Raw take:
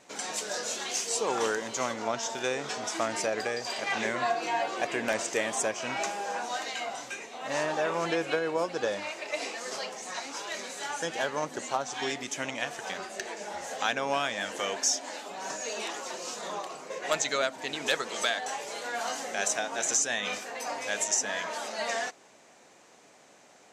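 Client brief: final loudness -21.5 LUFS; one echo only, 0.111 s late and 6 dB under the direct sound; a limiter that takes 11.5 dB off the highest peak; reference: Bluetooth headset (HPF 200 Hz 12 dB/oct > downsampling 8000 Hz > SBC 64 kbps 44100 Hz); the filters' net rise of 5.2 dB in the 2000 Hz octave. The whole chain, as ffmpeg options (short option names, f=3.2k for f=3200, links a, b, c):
-af "equalizer=f=2k:t=o:g=6.5,alimiter=limit=-21dB:level=0:latency=1,highpass=200,aecho=1:1:111:0.501,aresample=8000,aresample=44100,volume=10.5dB" -ar 44100 -c:a sbc -b:a 64k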